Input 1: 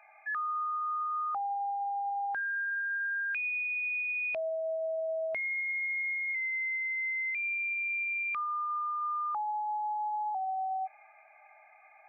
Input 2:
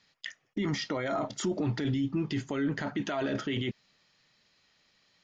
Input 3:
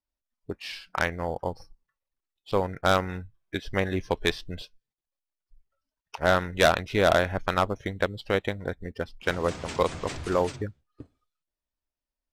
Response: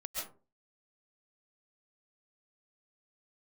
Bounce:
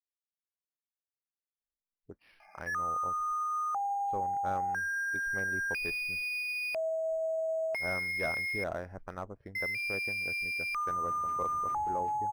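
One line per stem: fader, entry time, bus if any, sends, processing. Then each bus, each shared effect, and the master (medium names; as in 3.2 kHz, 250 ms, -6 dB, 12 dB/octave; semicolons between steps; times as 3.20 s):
+1.0 dB, 2.40 s, muted 8.64–9.55 s, no send, none
mute
-14.5 dB, 1.60 s, no send, peaking EQ 4.1 kHz -14.5 dB 1.5 oct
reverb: none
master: decimation joined by straight lines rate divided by 6×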